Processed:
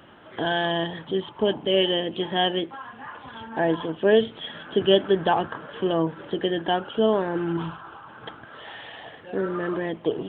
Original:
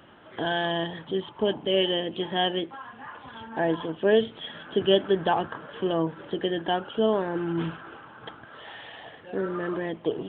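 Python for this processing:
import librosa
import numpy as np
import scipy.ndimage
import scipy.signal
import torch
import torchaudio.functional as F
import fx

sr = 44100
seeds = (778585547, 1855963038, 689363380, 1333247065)

y = fx.graphic_eq(x, sr, hz=(250, 500, 1000, 2000), db=(-7, -6, 7, -9), at=(7.57, 8.08))
y = y * 10.0 ** (2.5 / 20.0)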